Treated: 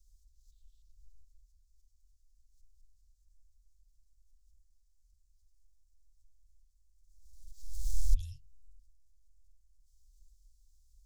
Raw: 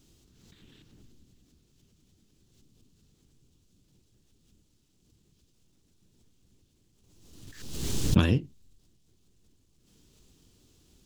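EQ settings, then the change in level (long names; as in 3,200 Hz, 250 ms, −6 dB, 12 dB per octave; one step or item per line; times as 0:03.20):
inverse Chebyshev band-stop filter 220–1,100 Hz, stop band 80 dB
tilt shelving filter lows +8.5 dB, about 890 Hz
−1.5 dB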